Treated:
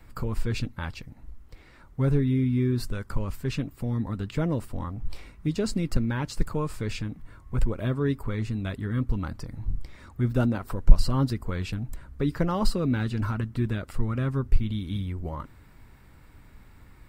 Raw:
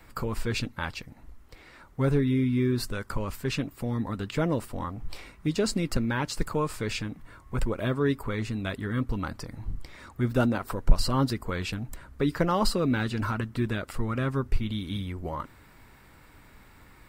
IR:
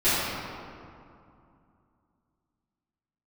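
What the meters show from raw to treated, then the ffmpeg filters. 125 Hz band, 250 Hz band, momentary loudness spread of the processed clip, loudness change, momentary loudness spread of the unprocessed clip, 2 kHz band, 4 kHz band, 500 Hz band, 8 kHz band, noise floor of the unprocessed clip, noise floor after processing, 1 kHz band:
+3.0 dB, 0.0 dB, 12 LU, +0.5 dB, 12 LU, −4.5 dB, −4.5 dB, −2.5 dB, −4.5 dB, −54 dBFS, −52 dBFS, −4.0 dB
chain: -af "lowshelf=frequency=220:gain=10,volume=-4.5dB"

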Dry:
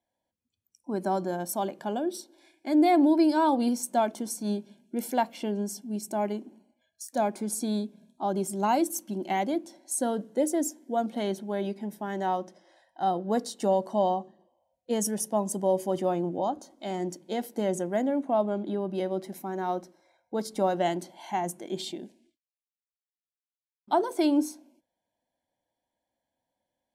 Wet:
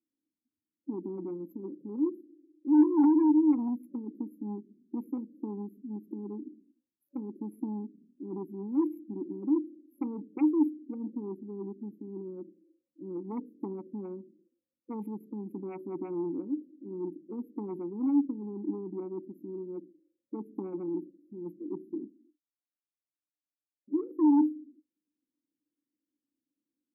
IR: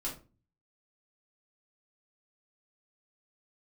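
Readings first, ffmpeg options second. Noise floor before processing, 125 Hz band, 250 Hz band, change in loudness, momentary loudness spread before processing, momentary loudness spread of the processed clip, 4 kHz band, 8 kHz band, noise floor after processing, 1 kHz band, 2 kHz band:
below −85 dBFS, −8.0 dB, 0.0 dB, −3.5 dB, 10 LU, 18 LU, below −40 dB, below −40 dB, below −85 dBFS, −16.0 dB, below −20 dB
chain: -filter_complex "[0:a]afftfilt=real='re*(1-between(b*sr/4096,570,11000))':imag='im*(1-between(b*sr/4096,570,11000))':win_size=4096:overlap=0.75,aeval=exprs='0.2*(cos(1*acos(clip(val(0)/0.2,-1,1)))-cos(1*PI/2))+0.0794*(cos(3*acos(clip(val(0)/0.2,-1,1)))-cos(3*PI/2))+0.00141*(cos(4*acos(clip(val(0)/0.2,-1,1)))-cos(4*PI/2))+0.0631*(cos(5*acos(clip(val(0)/0.2,-1,1)))-cos(5*PI/2))+0.00141*(cos(7*acos(clip(val(0)/0.2,-1,1)))-cos(7*PI/2))':channel_layout=same,asplit=3[link_01][link_02][link_03];[link_01]bandpass=frequency=300:width_type=q:width=8,volume=0dB[link_04];[link_02]bandpass=frequency=870:width_type=q:width=8,volume=-6dB[link_05];[link_03]bandpass=frequency=2240:width_type=q:width=8,volume=-9dB[link_06];[link_04][link_05][link_06]amix=inputs=3:normalize=0,volume=7dB"

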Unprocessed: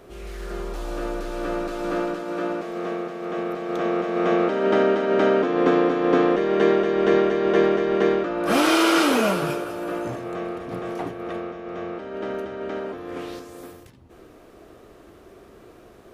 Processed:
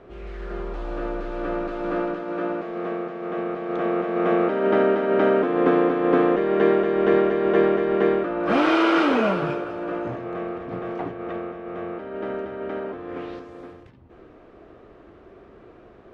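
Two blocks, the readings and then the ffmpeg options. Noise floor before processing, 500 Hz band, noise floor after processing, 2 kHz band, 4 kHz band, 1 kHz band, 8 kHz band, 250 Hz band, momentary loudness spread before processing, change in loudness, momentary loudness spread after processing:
−49 dBFS, 0.0 dB, −49 dBFS, −1.0 dB, −6.0 dB, 0.0 dB, below −15 dB, 0.0 dB, 14 LU, 0.0 dB, 14 LU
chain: -af "lowpass=2500"

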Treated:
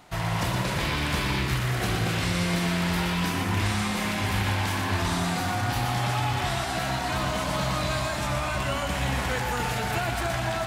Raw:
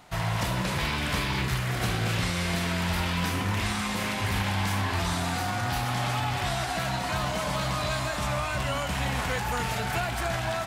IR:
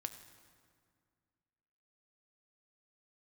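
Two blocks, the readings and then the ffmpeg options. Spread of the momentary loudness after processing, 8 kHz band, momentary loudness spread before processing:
2 LU, +1.0 dB, 2 LU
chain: -filter_complex "[0:a]equalizer=frequency=330:width=2.4:gain=3.5,asplit=2[link_01][link_02];[1:a]atrim=start_sample=2205,adelay=120[link_03];[link_02][link_03]afir=irnorm=-1:irlink=0,volume=-3dB[link_04];[link_01][link_04]amix=inputs=2:normalize=0"

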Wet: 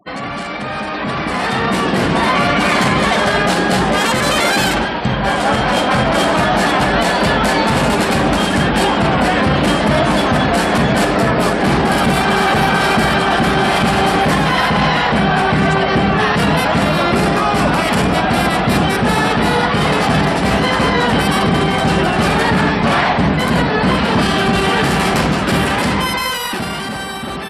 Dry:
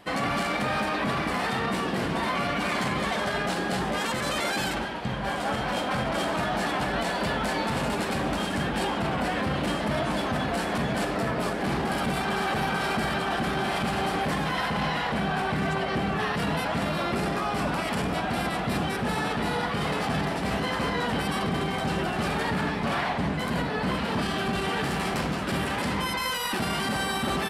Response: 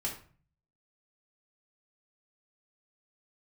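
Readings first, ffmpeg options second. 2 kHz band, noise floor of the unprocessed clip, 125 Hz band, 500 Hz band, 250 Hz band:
+13.0 dB, −30 dBFS, +13.5 dB, +13.0 dB, +13.0 dB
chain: -af "dynaudnorm=framelen=170:gausssize=17:maxgain=11dB,afftfilt=real='re*gte(hypot(re,im),0.00794)':imag='im*gte(hypot(re,im),0.00794)':win_size=1024:overlap=0.75,volume=3dB"

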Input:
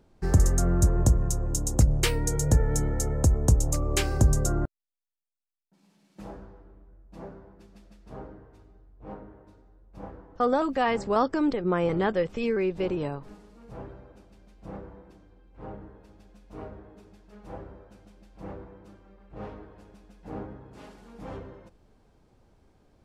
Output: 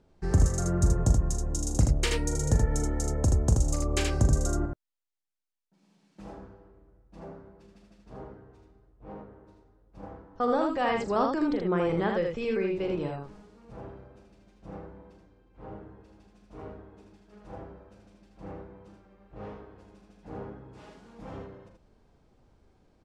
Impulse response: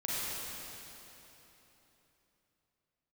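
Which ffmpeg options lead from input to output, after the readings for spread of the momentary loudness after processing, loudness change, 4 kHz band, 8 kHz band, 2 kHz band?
21 LU, −2.0 dB, −2.0 dB, −3.5 dB, −1.5 dB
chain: -af "lowpass=8600,aecho=1:1:40.82|78.72:0.355|0.631,volume=-3.5dB"

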